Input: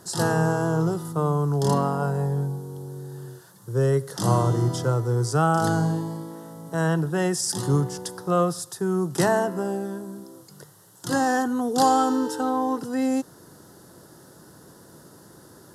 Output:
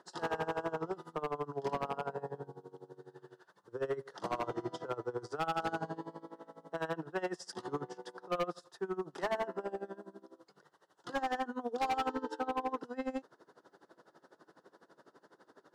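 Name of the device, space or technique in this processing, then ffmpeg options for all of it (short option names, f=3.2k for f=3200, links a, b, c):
helicopter radio: -af "highpass=400,lowpass=2.8k,aeval=exprs='val(0)*pow(10,-21*(0.5-0.5*cos(2*PI*12*n/s))/20)':c=same,asoftclip=type=hard:threshold=-26dB,volume=-2.5dB"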